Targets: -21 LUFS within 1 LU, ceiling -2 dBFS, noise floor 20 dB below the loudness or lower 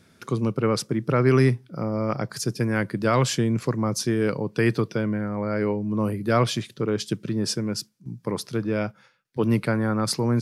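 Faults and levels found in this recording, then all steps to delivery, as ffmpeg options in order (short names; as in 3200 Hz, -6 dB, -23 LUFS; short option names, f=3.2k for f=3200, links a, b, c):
loudness -25.0 LUFS; peak -8.5 dBFS; loudness target -21.0 LUFS
-> -af "volume=4dB"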